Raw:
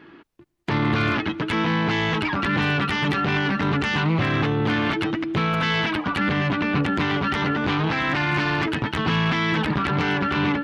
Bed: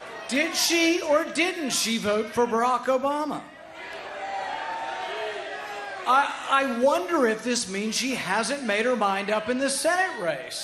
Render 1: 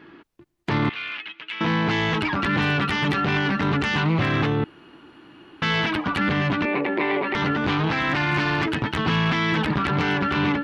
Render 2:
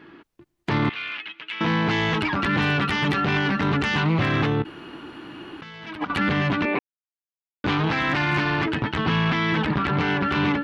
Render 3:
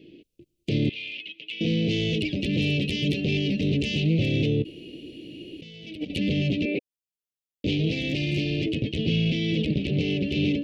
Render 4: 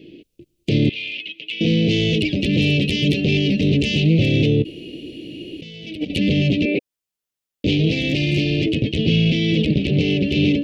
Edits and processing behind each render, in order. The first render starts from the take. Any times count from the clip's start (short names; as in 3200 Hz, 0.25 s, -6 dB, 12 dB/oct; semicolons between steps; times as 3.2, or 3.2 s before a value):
0.89–1.61 band-pass 2700 Hz, Q 2.7; 4.64–5.62 room tone; 6.65–7.35 speaker cabinet 350–3500 Hz, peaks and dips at 370 Hz +10 dB, 570 Hz +6 dB, 930 Hz +4 dB, 1400 Hz -10 dB, 2200 Hz +7 dB, 3100 Hz -7 dB
4.62–6.1 negative-ratio compressor -31 dBFS, ratio -0.5; 6.79–7.64 mute; 8.4–10.27 air absorption 74 m
elliptic band-stop 530–2600 Hz, stop band 50 dB
gain +7 dB